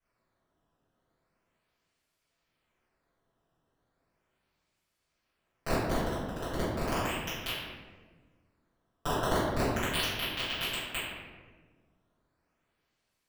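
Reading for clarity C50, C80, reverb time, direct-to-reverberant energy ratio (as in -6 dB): -1.0 dB, 1.5 dB, 1.4 s, -15.0 dB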